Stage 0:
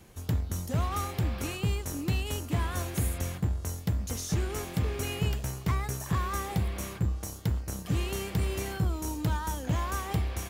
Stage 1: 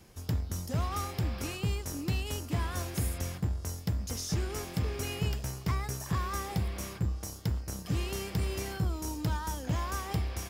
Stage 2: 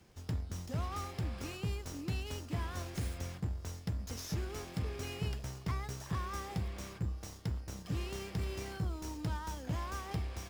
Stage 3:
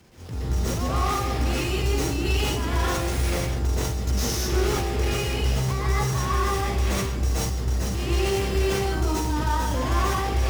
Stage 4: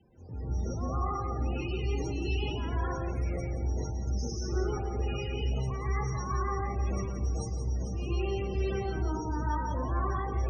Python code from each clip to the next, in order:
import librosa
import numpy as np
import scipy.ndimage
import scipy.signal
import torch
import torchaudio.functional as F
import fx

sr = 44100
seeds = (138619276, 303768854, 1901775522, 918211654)

y1 = fx.peak_eq(x, sr, hz=5100.0, db=9.0, octaves=0.22)
y1 = F.gain(torch.from_numpy(y1), -2.5).numpy()
y2 = fx.running_max(y1, sr, window=3)
y2 = F.gain(torch.from_numpy(y2), -5.5).numpy()
y3 = fx.transient(y2, sr, attack_db=-12, sustain_db=3)
y3 = fx.rev_plate(y3, sr, seeds[0], rt60_s=0.73, hf_ratio=0.95, predelay_ms=110, drr_db=-7.0)
y3 = fx.sustainer(y3, sr, db_per_s=22.0)
y3 = F.gain(torch.from_numpy(y3), 8.0).numpy()
y4 = fx.spec_topn(y3, sr, count=32)
y4 = y4 + 10.0 ** (-9.0 / 20.0) * np.pad(y4, (int(173 * sr / 1000.0), 0))[:len(y4)]
y4 = F.gain(torch.from_numpy(y4), -8.0).numpy()